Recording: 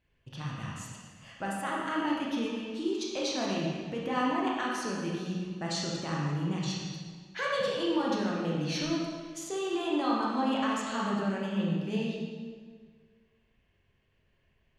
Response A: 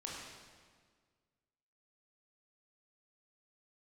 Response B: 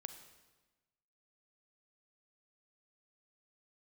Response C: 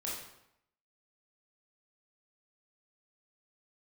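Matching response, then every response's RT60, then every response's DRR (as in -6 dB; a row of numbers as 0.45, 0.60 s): A; 1.7, 1.2, 0.80 s; -4.0, 8.0, -5.5 dB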